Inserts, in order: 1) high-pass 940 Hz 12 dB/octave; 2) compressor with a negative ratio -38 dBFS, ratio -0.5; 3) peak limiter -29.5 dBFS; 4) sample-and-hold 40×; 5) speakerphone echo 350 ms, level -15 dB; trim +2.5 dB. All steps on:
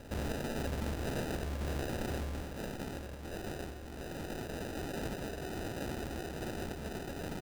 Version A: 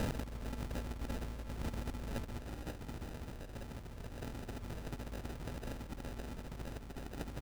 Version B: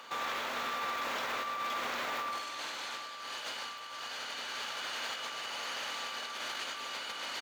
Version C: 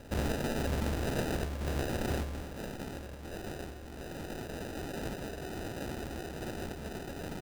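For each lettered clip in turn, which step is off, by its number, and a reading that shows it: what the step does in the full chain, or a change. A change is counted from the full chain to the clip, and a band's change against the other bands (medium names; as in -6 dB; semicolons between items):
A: 1, 125 Hz band +3.5 dB; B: 4, 125 Hz band -31.5 dB; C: 3, crest factor change +3.5 dB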